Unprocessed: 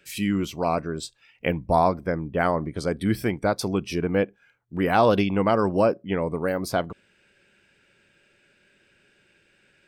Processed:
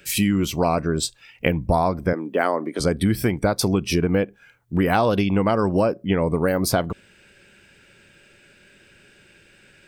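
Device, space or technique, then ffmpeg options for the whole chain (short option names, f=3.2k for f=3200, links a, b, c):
ASMR close-microphone chain: -filter_complex "[0:a]lowshelf=f=140:g=6,acompressor=threshold=-24dB:ratio=6,highshelf=f=7.2k:g=7,asettb=1/sr,asplit=3[a][b][c];[a]atrim=end=2.134[d];[b]atrim=start=2.13:end=2.8,asetpts=PTS-STARTPTS,afade=t=in:d=0.004:c=qsin,afade=t=out:st=0.666:d=0.004:c=qsin,highpass=f=260:w=0.5412,highpass=f=260:w=1.3066[e];[c]atrim=start=2.796[f];[d][e]acrossfade=d=0.004:c1=hsin:c2=qsin[g];[g][f]acrossfade=d=0.004:c1=qsin:c2=hsin,volume=8dB"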